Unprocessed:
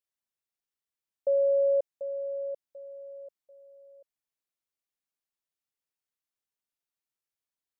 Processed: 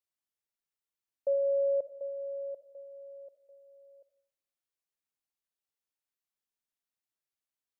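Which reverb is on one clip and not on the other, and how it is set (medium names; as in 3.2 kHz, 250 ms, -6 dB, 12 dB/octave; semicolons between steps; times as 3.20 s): algorithmic reverb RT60 0.63 s, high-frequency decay 0.45×, pre-delay 25 ms, DRR 16 dB; trim -3 dB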